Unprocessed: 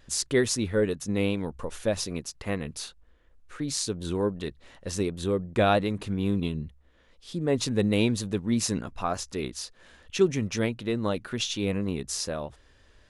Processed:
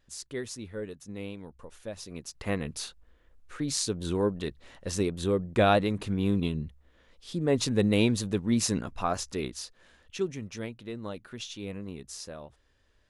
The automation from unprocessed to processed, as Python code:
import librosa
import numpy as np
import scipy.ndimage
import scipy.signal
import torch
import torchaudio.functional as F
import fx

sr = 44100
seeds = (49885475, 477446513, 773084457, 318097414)

y = fx.gain(x, sr, db=fx.line((1.98, -12.5), (2.44, 0.0), (9.31, 0.0), (10.39, -10.0)))